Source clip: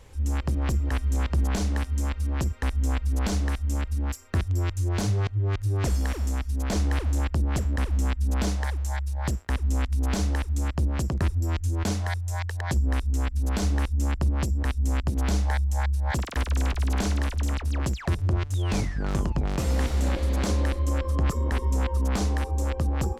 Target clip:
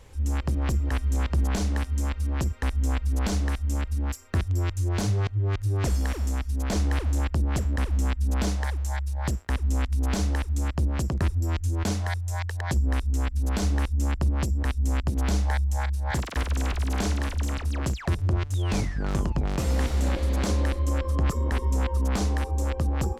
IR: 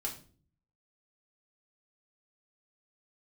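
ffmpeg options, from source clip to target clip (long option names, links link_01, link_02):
-filter_complex "[0:a]asettb=1/sr,asplit=3[link_01][link_02][link_03];[link_01]atrim=end=15.734[link_04];[link_02]atrim=start=15.73:end=17.94,asetpts=PTS-STARTPTS,afade=type=in:duration=0.004:curve=qsin,afade=type=out:start_time=2.206:duration=0.004:curve=qsin,asplit=2[link_05][link_06];[link_06]adelay=37,volume=-12dB[link_07];[link_05][link_07]amix=inputs=2:normalize=0,atrim=end_sample=97461[link_08];[link_03]atrim=start=17.936[link_09];[link_04][link_08]acrossfade=duration=0.004:curve1=hsin:curve2=qsin[link_10];[link_10][link_09]acrossfade=duration=0.004:curve1=qsin:curve2=hsin"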